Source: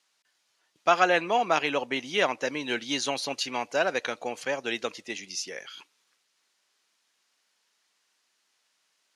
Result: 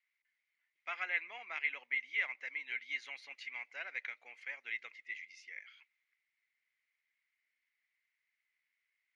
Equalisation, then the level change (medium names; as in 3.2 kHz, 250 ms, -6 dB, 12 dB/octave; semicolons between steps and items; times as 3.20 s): band-pass filter 2.1 kHz, Q 14; +3.0 dB